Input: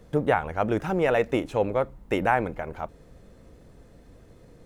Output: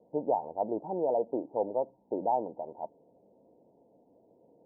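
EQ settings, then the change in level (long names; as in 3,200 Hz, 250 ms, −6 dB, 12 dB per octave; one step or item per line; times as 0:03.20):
high-pass filter 350 Hz 12 dB per octave
Chebyshev low-pass with heavy ripple 940 Hz, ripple 3 dB
−2.5 dB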